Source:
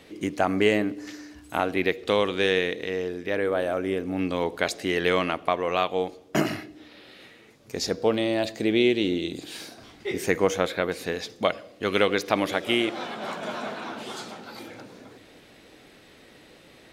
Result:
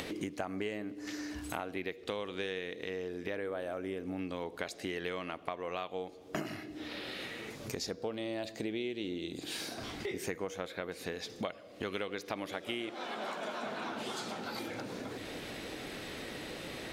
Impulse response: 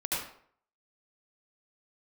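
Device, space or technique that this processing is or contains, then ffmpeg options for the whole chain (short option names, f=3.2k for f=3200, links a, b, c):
upward and downward compression: -filter_complex "[0:a]acompressor=mode=upward:threshold=-30dB:ratio=2.5,acompressor=threshold=-34dB:ratio=5,asettb=1/sr,asplit=3[a][b][c];[a]atrim=end=12.944[d];[b]atrim=start=12.94:end=13.63,asetpts=PTS-STARTPTS,afade=t=in:d=0.004:c=qsin,afade=t=out:st=0.686:d=0.004:c=qsin,highpass=240[e];[c]atrim=start=13.626[f];[d][e]acrossfade=d=0.004:c1=hsin:c2=qsin[g];[g][f]acrossfade=d=0.004:c1=qsin:c2=hsin,volume=-1.5dB"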